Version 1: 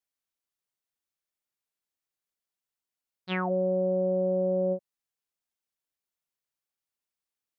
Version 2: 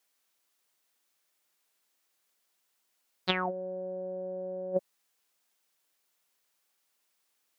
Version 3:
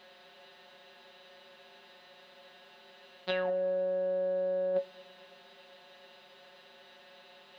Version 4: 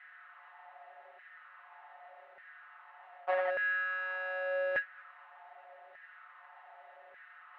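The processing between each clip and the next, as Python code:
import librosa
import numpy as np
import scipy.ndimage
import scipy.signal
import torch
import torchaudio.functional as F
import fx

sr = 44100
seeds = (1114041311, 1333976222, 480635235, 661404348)

y1 = scipy.signal.sosfilt(scipy.signal.butter(2, 160.0, 'highpass', fs=sr, output='sos'), x)
y1 = fx.low_shelf(y1, sr, hz=240.0, db=-8.0)
y1 = fx.over_compress(y1, sr, threshold_db=-36.0, ratio=-0.5)
y1 = y1 * 10.0 ** (4.5 / 20.0)
y2 = fx.bin_compress(y1, sr, power=0.4)
y2 = fx.comb_fb(y2, sr, f0_hz=79.0, decay_s=0.17, harmonics='odd', damping=0.0, mix_pct=90)
y2 = fx.echo_bbd(y2, sr, ms=113, stages=2048, feedback_pct=74, wet_db=-22.5)
y3 = fx.halfwave_hold(y2, sr)
y3 = fx.cabinet(y3, sr, low_hz=350.0, low_slope=12, high_hz=2400.0, hz=(350.0, 510.0, 750.0, 1300.0, 1900.0), db=(-7, -8, 8, 8, 8))
y3 = fx.filter_lfo_highpass(y3, sr, shape='saw_down', hz=0.84, low_hz=450.0, high_hz=1800.0, q=3.1)
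y3 = y3 * 10.0 ** (-9.0 / 20.0)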